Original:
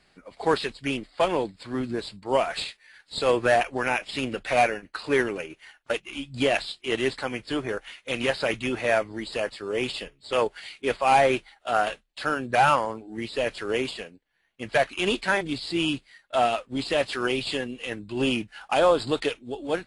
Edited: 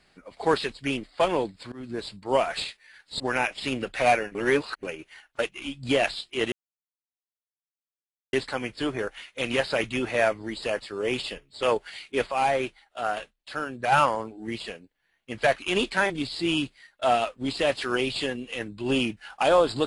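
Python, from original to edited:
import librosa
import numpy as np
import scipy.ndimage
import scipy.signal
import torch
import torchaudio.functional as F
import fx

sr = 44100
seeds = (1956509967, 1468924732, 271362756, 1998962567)

y = fx.edit(x, sr, fx.fade_in_from(start_s=1.72, length_s=0.35, floor_db=-22.0),
    fx.cut(start_s=3.2, length_s=0.51),
    fx.reverse_span(start_s=4.86, length_s=0.48),
    fx.insert_silence(at_s=7.03, length_s=1.81),
    fx.clip_gain(start_s=11.02, length_s=1.6, db=-5.0),
    fx.cut(start_s=13.3, length_s=0.61), tone=tone)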